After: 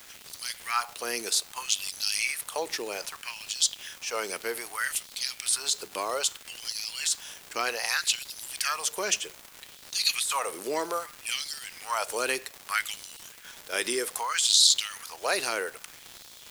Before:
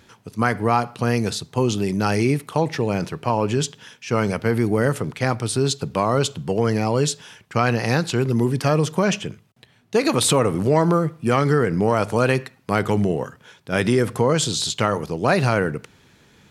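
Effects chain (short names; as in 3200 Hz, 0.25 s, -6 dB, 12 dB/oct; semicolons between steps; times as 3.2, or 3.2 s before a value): pre-emphasis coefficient 0.97; requantised 10-bit, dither triangular; negative-ratio compressor -28 dBFS, ratio -1; LFO high-pass sine 0.63 Hz 330–4000 Hz; crackle 230/s -36 dBFS; gain +4.5 dB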